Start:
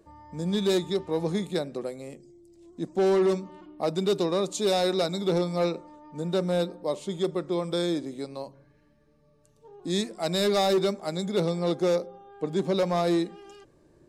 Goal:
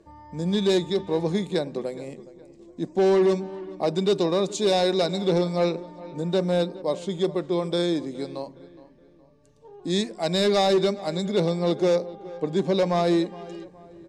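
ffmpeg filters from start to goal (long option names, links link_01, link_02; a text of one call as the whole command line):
ffmpeg -i in.wav -filter_complex "[0:a]lowpass=7500,bandreject=frequency=1300:width=8.1,asplit=2[link_01][link_02];[link_02]adelay=417,lowpass=frequency=2600:poles=1,volume=-18dB,asplit=2[link_03][link_04];[link_04]adelay=417,lowpass=frequency=2600:poles=1,volume=0.4,asplit=2[link_05][link_06];[link_06]adelay=417,lowpass=frequency=2600:poles=1,volume=0.4[link_07];[link_01][link_03][link_05][link_07]amix=inputs=4:normalize=0,volume=3dB" out.wav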